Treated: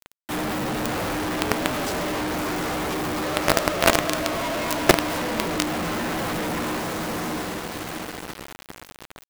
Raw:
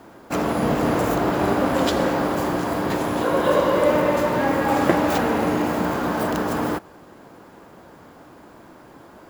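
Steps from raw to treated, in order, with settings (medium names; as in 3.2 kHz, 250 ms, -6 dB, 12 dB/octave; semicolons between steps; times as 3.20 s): frequency axis rescaled in octaves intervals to 114%; echo that smears into a reverb 664 ms, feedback 45%, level -8 dB; companded quantiser 2-bit; trim -1 dB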